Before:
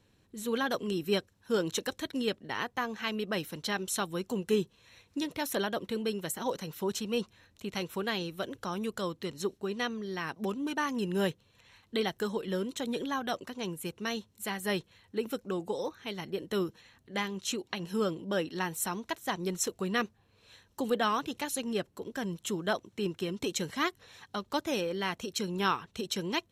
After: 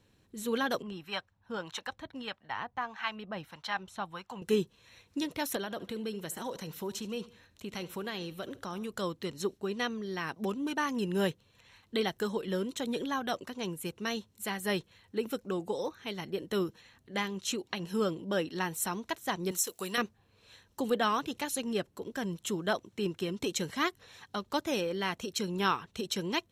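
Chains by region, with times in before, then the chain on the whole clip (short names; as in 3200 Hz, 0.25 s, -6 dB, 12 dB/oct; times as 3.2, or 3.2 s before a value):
0.82–4.42 EQ curve 100 Hz 0 dB, 420 Hz -11 dB, 810 Hz +6 dB, 3600 Hz -3 dB, 7800 Hz -12 dB, 14000 Hz -16 dB + harmonic tremolo 1.6 Hz, crossover 640 Hz
5.56–8.91 compressor 2:1, threshold -37 dBFS + feedback echo 73 ms, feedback 38%, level -18 dB
19.51–19.98 RIAA curve recording + compressor, threshold -26 dBFS
whole clip: dry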